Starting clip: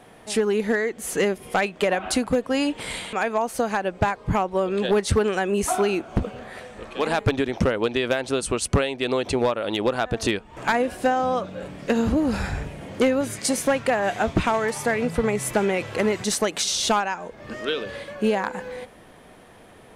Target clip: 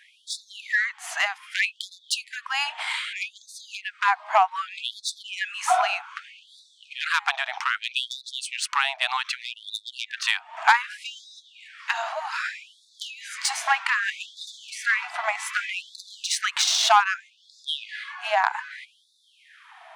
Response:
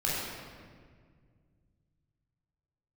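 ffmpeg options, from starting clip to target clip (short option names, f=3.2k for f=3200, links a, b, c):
-af "adynamicsmooth=sensitivity=1:basefreq=4.4k,afftfilt=real='re*gte(b*sr/1024,610*pow(3500/610,0.5+0.5*sin(2*PI*0.64*pts/sr)))':imag='im*gte(b*sr/1024,610*pow(3500/610,0.5+0.5*sin(2*PI*0.64*pts/sr)))':win_size=1024:overlap=0.75,volume=6.5dB"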